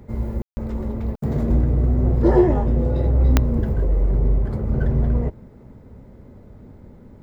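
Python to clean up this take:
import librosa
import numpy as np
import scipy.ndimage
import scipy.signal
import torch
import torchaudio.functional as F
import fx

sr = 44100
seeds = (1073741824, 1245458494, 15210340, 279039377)

y = fx.fix_declick_ar(x, sr, threshold=10.0)
y = fx.fix_ambience(y, sr, seeds[0], print_start_s=5.4, print_end_s=5.9, start_s=0.42, end_s=0.57)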